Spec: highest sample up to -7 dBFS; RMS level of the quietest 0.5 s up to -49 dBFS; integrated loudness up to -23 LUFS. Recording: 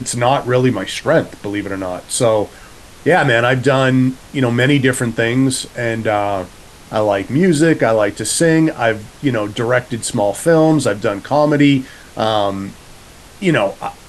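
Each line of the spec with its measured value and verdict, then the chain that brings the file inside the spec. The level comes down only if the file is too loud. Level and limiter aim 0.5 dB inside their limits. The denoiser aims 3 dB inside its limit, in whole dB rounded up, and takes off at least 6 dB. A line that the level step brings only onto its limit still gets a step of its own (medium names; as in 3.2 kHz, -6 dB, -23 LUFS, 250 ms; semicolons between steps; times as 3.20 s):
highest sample -1.5 dBFS: fail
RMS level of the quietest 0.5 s -39 dBFS: fail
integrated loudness -15.5 LUFS: fail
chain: noise reduction 6 dB, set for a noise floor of -39 dBFS; trim -8 dB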